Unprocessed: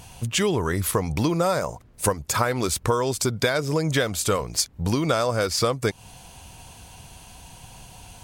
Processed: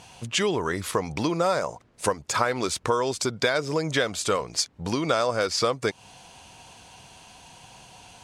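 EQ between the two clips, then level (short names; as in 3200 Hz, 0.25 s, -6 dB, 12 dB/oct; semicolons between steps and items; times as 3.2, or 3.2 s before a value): LPF 7000 Hz 12 dB/oct; low shelf 70 Hz -10.5 dB; low shelf 170 Hz -8.5 dB; 0.0 dB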